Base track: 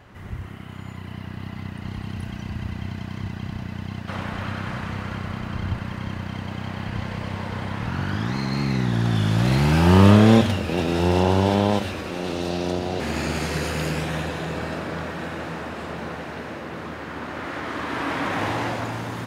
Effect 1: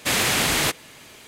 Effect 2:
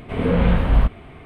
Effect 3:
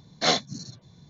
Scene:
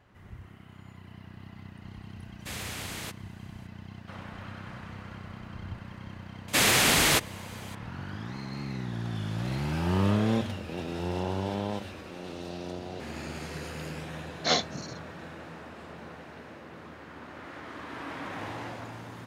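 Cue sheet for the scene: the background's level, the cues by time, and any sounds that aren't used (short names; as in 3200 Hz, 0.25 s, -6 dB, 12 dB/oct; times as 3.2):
base track -12.5 dB
2.4 add 1 -16.5 dB + vocal rider
6.48 add 1 -1 dB
14.23 add 3 -3 dB
not used: 2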